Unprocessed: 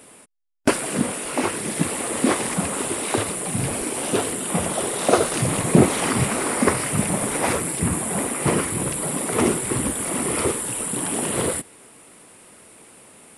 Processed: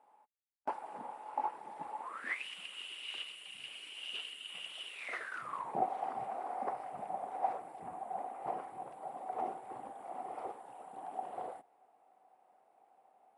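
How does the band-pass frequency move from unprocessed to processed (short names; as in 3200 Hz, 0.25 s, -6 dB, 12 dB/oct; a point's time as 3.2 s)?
band-pass, Q 14
2 s 850 Hz
2.46 s 2900 Hz
4.88 s 2900 Hz
5.8 s 760 Hz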